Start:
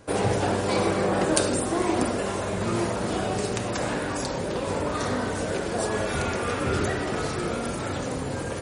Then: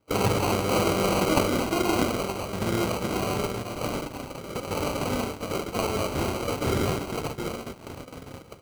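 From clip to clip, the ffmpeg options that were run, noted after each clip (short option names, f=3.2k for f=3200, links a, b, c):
-af "acrusher=samples=25:mix=1:aa=0.000001,agate=range=-20dB:threshold=-27dB:ratio=16:detection=peak"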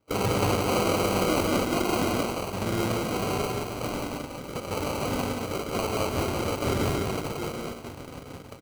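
-filter_complex "[0:a]asoftclip=type=hard:threshold=-17dB,asplit=2[a][b];[b]aecho=0:1:178:0.708[c];[a][c]amix=inputs=2:normalize=0,volume=-2dB"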